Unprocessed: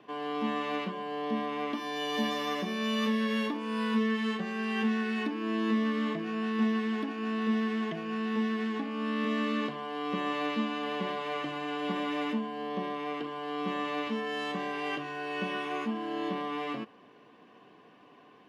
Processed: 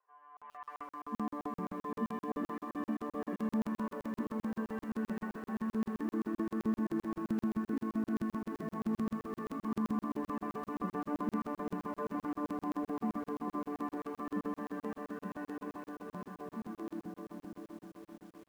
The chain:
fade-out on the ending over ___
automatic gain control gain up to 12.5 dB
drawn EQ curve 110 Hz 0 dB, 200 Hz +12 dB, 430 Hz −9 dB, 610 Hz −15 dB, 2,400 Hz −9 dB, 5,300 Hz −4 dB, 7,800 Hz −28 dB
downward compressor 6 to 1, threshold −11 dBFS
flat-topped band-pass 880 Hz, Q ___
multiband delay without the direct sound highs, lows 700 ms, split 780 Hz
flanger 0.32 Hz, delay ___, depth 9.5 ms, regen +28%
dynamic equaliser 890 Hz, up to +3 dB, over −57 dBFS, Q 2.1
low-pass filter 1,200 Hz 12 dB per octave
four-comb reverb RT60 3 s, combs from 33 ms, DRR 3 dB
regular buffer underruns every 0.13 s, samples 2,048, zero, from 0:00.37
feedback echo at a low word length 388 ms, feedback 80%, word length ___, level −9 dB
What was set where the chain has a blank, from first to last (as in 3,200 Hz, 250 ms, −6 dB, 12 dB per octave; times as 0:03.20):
5.46 s, 0.78, 1.9 ms, 10 bits